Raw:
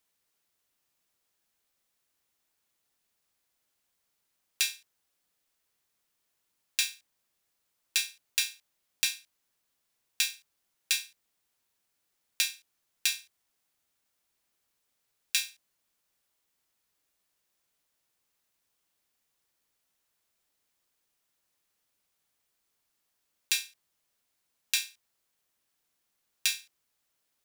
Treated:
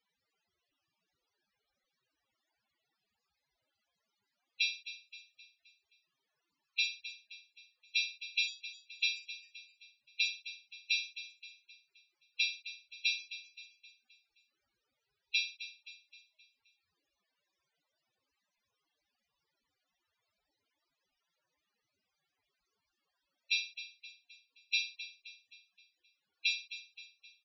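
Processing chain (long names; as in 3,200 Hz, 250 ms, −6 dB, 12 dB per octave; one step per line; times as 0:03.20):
low-pass filter 6,900 Hz 12 dB per octave
downward compressor 4 to 1, threshold −29 dBFS, peak gain reduction 5 dB
tube saturation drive 25 dB, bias 0.3
repeating echo 262 ms, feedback 48%, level −13.5 dB
spectral peaks only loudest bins 16
level +8.5 dB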